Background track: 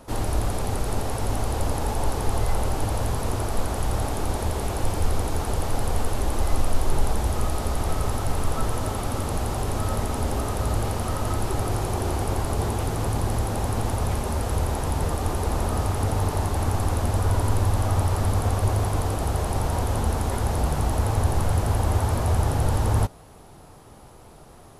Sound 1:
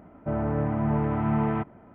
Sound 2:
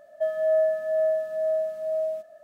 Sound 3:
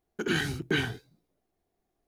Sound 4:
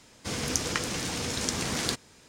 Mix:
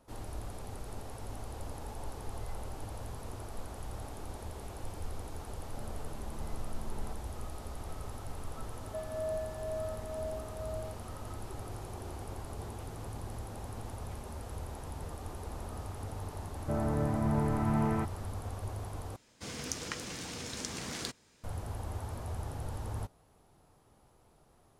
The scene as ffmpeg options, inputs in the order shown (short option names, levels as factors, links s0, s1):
-filter_complex "[1:a]asplit=2[s0][s1];[0:a]volume=0.141[s2];[s0]acompressor=threshold=0.0282:ratio=6:attack=3.2:release=140:knee=1:detection=peak[s3];[s2]asplit=2[s4][s5];[s4]atrim=end=19.164[s6];[4:a]atrim=end=2.28,asetpts=PTS-STARTPTS,volume=0.335[s7];[s5]atrim=start=21.436[s8];[s3]atrim=end=1.94,asetpts=PTS-STARTPTS,volume=0.178,afade=t=in:d=0.004:c=hsin,afade=t=out:st=1.936:d=0.004:c=hsin,adelay=5510[s9];[2:a]atrim=end=2.43,asetpts=PTS-STARTPTS,volume=0.188,afade=t=in:d=0.004:c=hsin,afade=t=out:st=2.426:d=0.004:c=hsin,adelay=8730[s10];[s1]atrim=end=1.94,asetpts=PTS-STARTPTS,volume=0.562,afade=t=in:d=0.004:c=hsin,afade=t=out:st=1.936:d=0.004:c=hsin,adelay=16420[s11];[s6][s7]acrossfade=d=0.004:c1=hsin:c2=hsin[s12];[s12][s8]acrossfade=d=0.004:c1=hsin:c2=hsin[s13];[s13][s9][s10][s11]amix=inputs=4:normalize=0"